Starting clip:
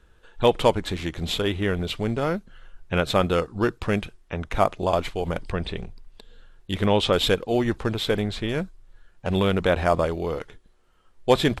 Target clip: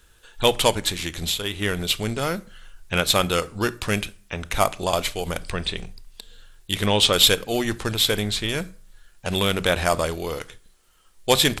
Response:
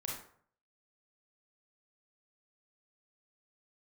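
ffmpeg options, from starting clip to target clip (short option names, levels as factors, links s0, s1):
-filter_complex "[0:a]crystalizer=i=7:c=0,asplit=3[s0][s1][s2];[s0]afade=t=out:st=0.91:d=0.02[s3];[s1]acompressor=threshold=0.0891:ratio=3,afade=t=in:st=0.91:d=0.02,afade=t=out:st=1.61:d=0.02[s4];[s2]afade=t=in:st=1.61:d=0.02[s5];[s3][s4][s5]amix=inputs=3:normalize=0,aeval=exprs='1.19*(cos(1*acos(clip(val(0)/1.19,-1,1)))-cos(1*PI/2))+0.0299*(cos(6*acos(clip(val(0)/1.19,-1,1)))-cos(6*PI/2))':c=same,asplit=2[s6][s7];[1:a]atrim=start_sample=2205,asetrate=57330,aresample=44100,lowshelf=f=180:g=11[s8];[s7][s8]afir=irnorm=-1:irlink=0,volume=0.188[s9];[s6][s9]amix=inputs=2:normalize=0,volume=0.668"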